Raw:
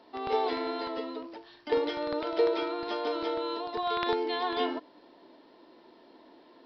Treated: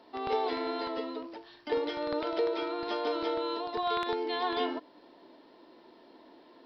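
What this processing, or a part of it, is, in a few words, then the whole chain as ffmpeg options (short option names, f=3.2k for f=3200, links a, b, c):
clipper into limiter: -af "asoftclip=type=hard:threshold=-14.5dB,alimiter=limit=-19.5dB:level=0:latency=1:release=438"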